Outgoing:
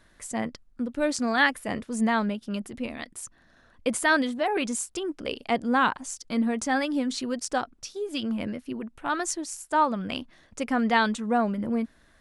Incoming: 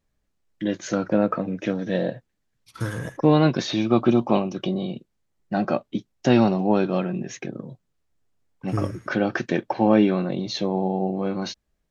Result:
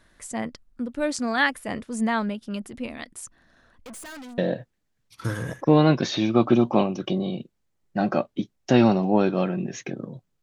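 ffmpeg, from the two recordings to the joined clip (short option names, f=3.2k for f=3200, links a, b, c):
-filter_complex "[0:a]asettb=1/sr,asplit=3[a][b][c];[a]atrim=end=3.854[d];[b]atrim=start=3.85:end=4.38,asetpts=PTS-STARTPTS,afade=t=in:d=0.004:c=qsin,afade=t=out:st=0.526:d=0.004:c=qsin,aeval=exprs='(tanh(89.1*val(0)+0.25)-tanh(0.25))/89.1':c=same[e];[c]atrim=start=4.376[f];[d][e]acrossfade=d=0.004:c1=hsin:c2=qsin[g];[g][f]acrossfade=d=0.004:c1=qsin:c2=hsin,apad=whole_dur=10.42,atrim=end=10.42,atrim=end=4.382[h];[1:a]atrim=start=1.938:end=7.98[i];[h][i]acrossfade=d=0.004:c1=hsin:c2=hsin"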